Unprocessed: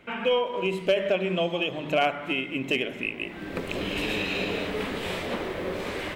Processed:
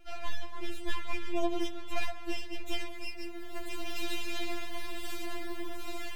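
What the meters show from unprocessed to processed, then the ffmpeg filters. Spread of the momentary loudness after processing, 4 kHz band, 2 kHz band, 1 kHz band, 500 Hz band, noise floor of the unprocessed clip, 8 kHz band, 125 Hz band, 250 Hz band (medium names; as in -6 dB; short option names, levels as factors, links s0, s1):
8 LU, -9.0 dB, -11.0 dB, -10.0 dB, -14.5 dB, -39 dBFS, 0.0 dB, -12.5 dB, -8.5 dB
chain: -af "lowshelf=f=240:g=7.5,areverse,acompressor=mode=upward:threshold=0.0126:ratio=2.5,areverse,aemphasis=mode=production:type=50kf,aeval=exprs='max(val(0),0)':c=same,afftfilt=real='re*4*eq(mod(b,16),0)':imag='im*4*eq(mod(b,16),0)':win_size=2048:overlap=0.75,volume=0.596"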